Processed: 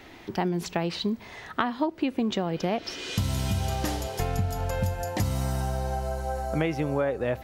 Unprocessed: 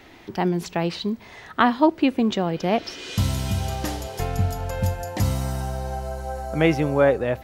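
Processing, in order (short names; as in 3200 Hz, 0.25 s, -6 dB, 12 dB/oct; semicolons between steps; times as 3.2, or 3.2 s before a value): compressor 12:1, threshold -22 dBFS, peak gain reduction 12 dB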